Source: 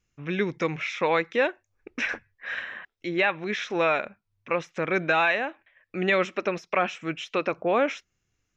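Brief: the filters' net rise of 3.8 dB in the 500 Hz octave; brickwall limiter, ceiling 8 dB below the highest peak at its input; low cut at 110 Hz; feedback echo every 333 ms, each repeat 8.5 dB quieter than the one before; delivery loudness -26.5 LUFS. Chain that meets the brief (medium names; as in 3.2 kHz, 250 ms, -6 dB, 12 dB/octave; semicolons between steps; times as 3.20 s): high-pass 110 Hz; peaking EQ 500 Hz +4.5 dB; peak limiter -17 dBFS; feedback delay 333 ms, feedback 38%, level -8.5 dB; trim +2.5 dB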